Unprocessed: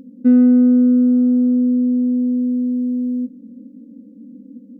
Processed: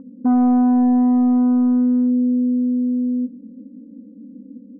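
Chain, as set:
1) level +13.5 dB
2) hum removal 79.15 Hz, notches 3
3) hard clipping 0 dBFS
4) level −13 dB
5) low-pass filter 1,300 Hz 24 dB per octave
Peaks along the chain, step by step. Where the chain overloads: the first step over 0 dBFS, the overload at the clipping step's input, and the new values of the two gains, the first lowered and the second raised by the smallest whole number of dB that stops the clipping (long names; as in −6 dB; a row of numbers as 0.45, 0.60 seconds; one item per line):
+8.0, +8.0, 0.0, −13.0, −12.0 dBFS
step 1, 8.0 dB
step 1 +5.5 dB, step 4 −5 dB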